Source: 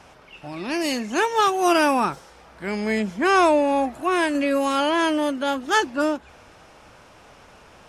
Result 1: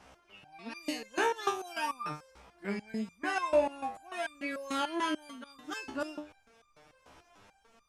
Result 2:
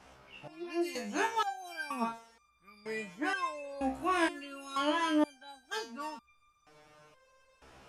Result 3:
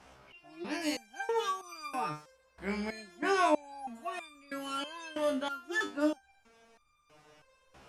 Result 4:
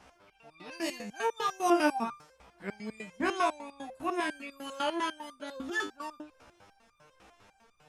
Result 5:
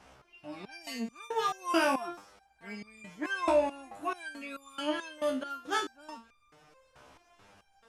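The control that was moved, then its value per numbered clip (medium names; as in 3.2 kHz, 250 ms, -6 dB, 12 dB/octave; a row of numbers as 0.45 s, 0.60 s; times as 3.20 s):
resonator arpeggio, rate: 6.8 Hz, 2.1 Hz, 3.1 Hz, 10 Hz, 4.6 Hz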